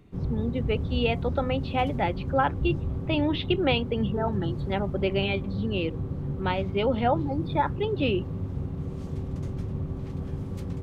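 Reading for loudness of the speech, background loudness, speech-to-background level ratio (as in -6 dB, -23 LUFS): -28.5 LUFS, -32.5 LUFS, 4.0 dB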